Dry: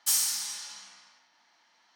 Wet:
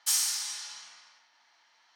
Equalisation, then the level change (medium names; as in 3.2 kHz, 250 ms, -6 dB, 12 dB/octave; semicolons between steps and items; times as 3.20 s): frequency weighting A; 0.0 dB